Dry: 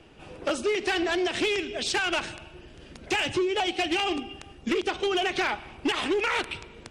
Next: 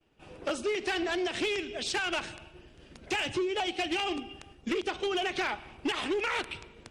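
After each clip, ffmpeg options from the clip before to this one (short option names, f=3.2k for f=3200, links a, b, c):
-af "agate=range=-33dB:threshold=-44dB:ratio=3:detection=peak,volume=-4.5dB"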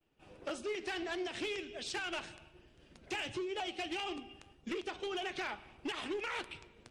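-af "flanger=delay=4.9:depth=5.4:regen=82:speed=1.7:shape=triangular,volume=-3.5dB"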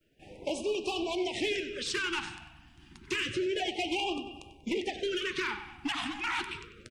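-filter_complex "[0:a]asplit=2[a][b];[b]adelay=95,lowpass=f=4.2k:p=1,volume=-11dB,asplit=2[c][d];[d]adelay=95,lowpass=f=4.2k:p=1,volume=0.52,asplit=2[e][f];[f]adelay=95,lowpass=f=4.2k:p=1,volume=0.52,asplit=2[g][h];[h]adelay=95,lowpass=f=4.2k:p=1,volume=0.52,asplit=2[i][j];[j]adelay=95,lowpass=f=4.2k:p=1,volume=0.52,asplit=2[k][l];[l]adelay=95,lowpass=f=4.2k:p=1,volume=0.52[m];[a][c][e][g][i][k][m]amix=inputs=7:normalize=0,afftfilt=real='re*(1-between(b*sr/1024,470*pow(1700/470,0.5+0.5*sin(2*PI*0.29*pts/sr))/1.41,470*pow(1700/470,0.5+0.5*sin(2*PI*0.29*pts/sr))*1.41))':imag='im*(1-between(b*sr/1024,470*pow(1700/470,0.5+0.5*sin(2*PI*0.29*pts/sr))/1.41,470*pow(1700/470,0.5+0.5*sin(2*PI*0.29*pts/sr))*1.41))':win_size=1024:overlap=0.75,volume=7dB"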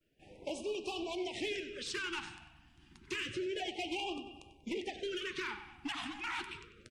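-af "volume=-6dB" -ar 44100 -c:a libmp3lame -b:a 80k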